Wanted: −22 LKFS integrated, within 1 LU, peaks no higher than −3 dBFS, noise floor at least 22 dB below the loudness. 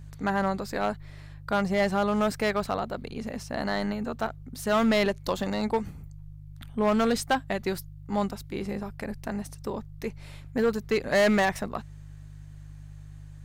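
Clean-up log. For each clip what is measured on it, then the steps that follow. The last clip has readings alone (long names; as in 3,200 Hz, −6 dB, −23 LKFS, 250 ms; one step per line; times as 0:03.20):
share of clipped samples 1.4%; peaks flattened at −18.0 dBFS; mains hum 50 Hz; hum harmonics up to 150 Hz; level of the hum −42 dBFS; integrated loudness −28.5 LKFS; sample peak −18.0 dBFS; target loudness −22.0 LKFS
→ clipped peaks rebuilt −18 dBFS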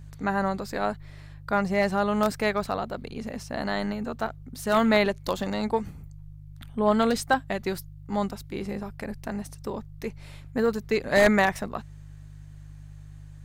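share of clipped samples 0.0%; mains hum 50 Hz; hum harmonics up to 150 Hz; level of the hum −42 dBFS
→ hum removal 50 Hz, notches 3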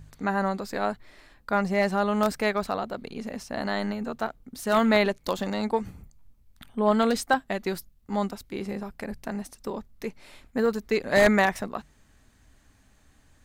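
mains hum none found; integrated loudness −27.0 LKFS; sample peak −9.0 dBFS; target loudness −22.0 LKFS
→ level +5 dB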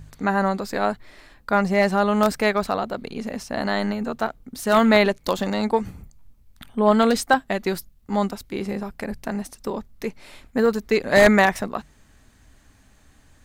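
integrated loudness −22.0 LKFS; sample peak −4.0 dBFS; background noise floor −56 dBFS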